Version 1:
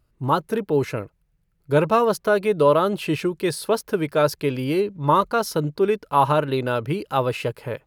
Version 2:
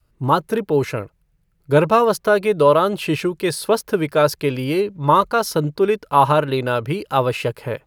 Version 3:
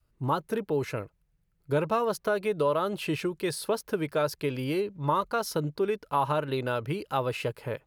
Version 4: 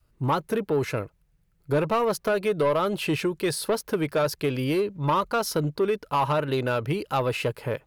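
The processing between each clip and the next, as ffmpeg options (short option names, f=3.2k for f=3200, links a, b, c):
-af "adynamicequalizer=threshold=0.0251:dfrequency=240:dqfactor=0.79:tfrequency=240:tqfactor=0.79:attack=5:release=100:ratio=0.375:range=2:mode=cutabove:tftype=bell,volume=4dB"
-af "acompressor=threshold=-17dB:ratio=2,volume=-8dB"
-af "asoftclip=type=tanh:threshold=-21.5dB,volume=5.5dB"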